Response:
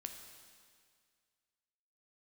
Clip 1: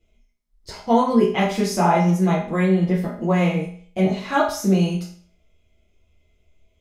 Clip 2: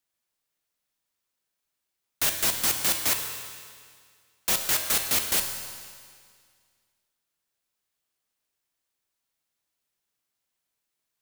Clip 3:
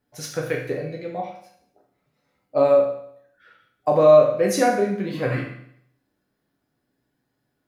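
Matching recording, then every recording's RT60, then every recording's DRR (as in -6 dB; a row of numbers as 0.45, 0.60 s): 2; 0.50, 2.0, 0.65 s; -7.0, 4.5, -1.5 dB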